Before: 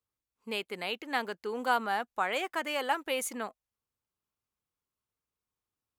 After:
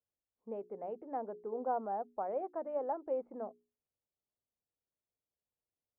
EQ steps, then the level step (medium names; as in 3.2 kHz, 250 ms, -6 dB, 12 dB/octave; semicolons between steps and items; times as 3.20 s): four-pole ladder low-pass 770 Hz, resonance 45%; hum notches 60/120/180/240/300/360/420 Hz; +2.5 dB